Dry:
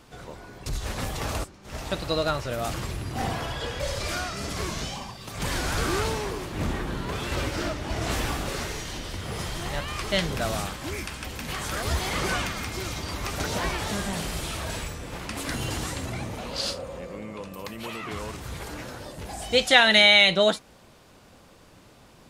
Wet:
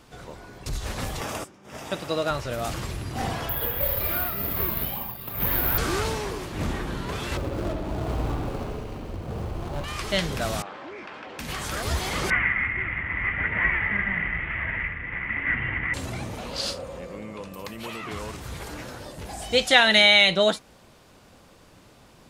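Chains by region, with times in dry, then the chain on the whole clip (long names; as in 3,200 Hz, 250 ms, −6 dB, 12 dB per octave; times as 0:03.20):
0:01.21–0:02.31: high-pass filter 150 Hz + notch filter 4,200 Hz, Q 5.9 + one half of a high-frequency compander decoder only
0:03.49–0:05.78: moving average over 7 samples + bad sample-rate conversion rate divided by 3×, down none, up zero stuff
0:07.37–0:09.84: running median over 25 samples + bucket-brigade delay 69 ms, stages 2,048, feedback 74%, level −6 dB
0:10.62–0:11.39: high-pass filter 430 Hz + head-to-tape spacing loss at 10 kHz 42 dB + envelope flattener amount 70%
0:12.30–0:15.94: variable-slope delta modulation 16 kbit/s + low-pass with resonance 2,000 Hz, resonance Q 14 + parametric band 540 Hz −8.5 dB 1.9 octaves
whole clip: no processing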